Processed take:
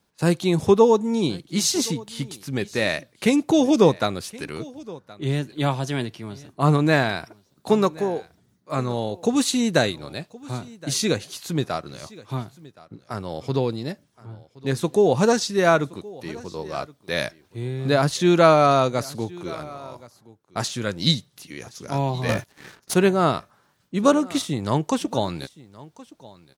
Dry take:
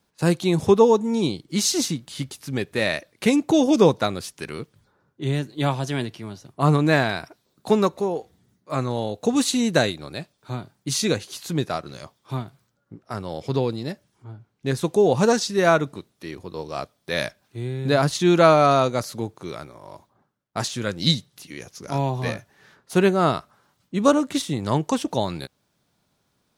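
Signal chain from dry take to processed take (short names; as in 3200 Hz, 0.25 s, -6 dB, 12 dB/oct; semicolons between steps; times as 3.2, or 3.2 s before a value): echo 1.071 s -21 dB; 22.29–22.94 sample leveller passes 3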